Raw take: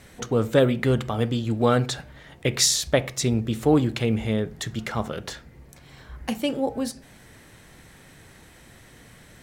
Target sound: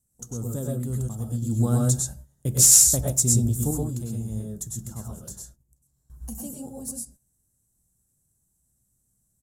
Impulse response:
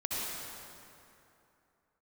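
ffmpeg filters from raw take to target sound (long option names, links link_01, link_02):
-filter_complex "[0:a]agate=range=-20dB:threshold=-42dB:ratio=16:detection=peak,firequalizer=gain_entry='entry(130,0);entry(450,-14);entry(1000,-14);entry(2200,-30);entry(7100,10);entry(13000,12)':delay=0.05:min_phase=1,asettb=1/sr,asplit=3[link_01][link_02][link_03];[link_01]atrim=end=1.424[link_04];[link_02]atrim=start=1.42:end=3.71,asetpts=PTS-STARTPTS,afade=type=in:duration=0.004:curve=qsin,afade=type=out:start_time=2.286:duration=0.004:curve=qsin,acontrast=85[link_05];[link_03]atrim=start=3.706[link_06];[link_04][link_05]acrossfade=duration=0.004:curve1=hsin:curve2=qsin[link_07];[link_07][link_06]acrossfade=duration=0.004:curve1=qsin:curve2=hsin[link_08];[1:a]atrim=start_sample=2205,atrim=end_sample=3969,asetrate=28665,aresample=44100[link_09];[link_08][link_09]afir=irnorm=-1:irlink=0,volume=-6dB"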